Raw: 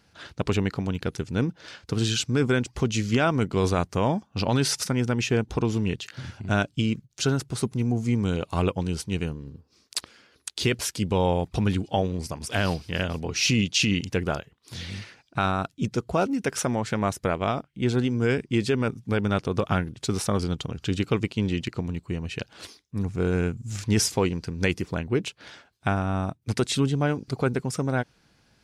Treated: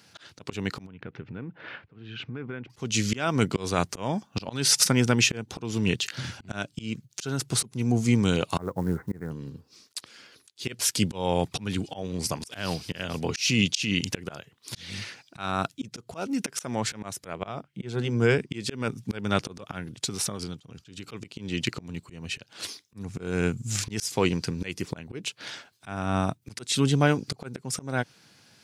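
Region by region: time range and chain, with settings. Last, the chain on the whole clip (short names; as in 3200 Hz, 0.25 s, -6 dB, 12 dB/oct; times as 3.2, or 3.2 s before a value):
0.86–2.7 LPF 2400 Hz 24 dB/oct + compressor 4:1, threshold -38 dBFS
8.58–9.31 steep low-pass 2000 Hz 96 dB/oct + companded quantiser 8-bit
17.33–18.52 high shelf 2400 Hz -7.5 dB + notch 260 Hz, Q 5.4
19.96–21.09 gate -46 dBFS, range -10 dB + compressor 8:1, threshold -32 dBFS
whole clip: HPF 97 Hz 24 dB/oct; high shelf 2200 Hz +8 dB; auto swell 0.322 s; gain +2.5 dB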